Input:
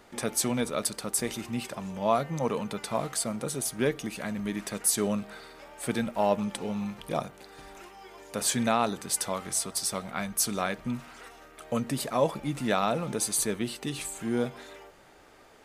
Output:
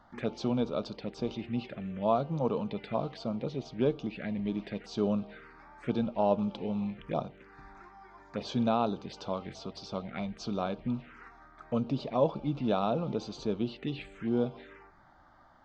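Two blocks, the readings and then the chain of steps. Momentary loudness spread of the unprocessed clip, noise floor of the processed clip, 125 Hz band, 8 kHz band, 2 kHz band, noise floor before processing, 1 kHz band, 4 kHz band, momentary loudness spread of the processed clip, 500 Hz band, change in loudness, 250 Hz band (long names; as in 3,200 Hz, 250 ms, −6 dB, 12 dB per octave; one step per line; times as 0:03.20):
18 LU, −59 dBFS, 0.0 dB, below −25 dB, −10.0 dB, −55 dBFS, −3.5 dB, −8.5 dB, 14 LU, −1.5 dB, −3.5 dB, −0.5 dB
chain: phaser swept by the level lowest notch 400 Hz, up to 1,900 Hz, full sweep at −27.5 dBFS
Gaussian smoothing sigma 2.3 samples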